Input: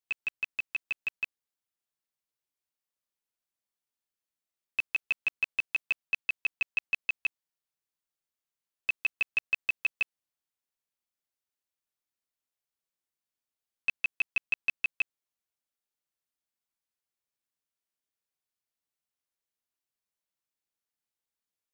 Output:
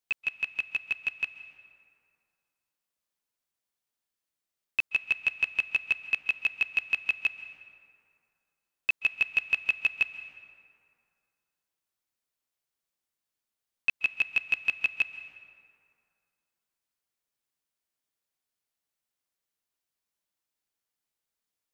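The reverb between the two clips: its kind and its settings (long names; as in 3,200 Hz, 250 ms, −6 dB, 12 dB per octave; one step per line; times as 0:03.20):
dense smooth reverb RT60 2.4 s, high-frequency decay 0.55×, pre-delay 120 ms, DRR 12.5 dB
level +3 dB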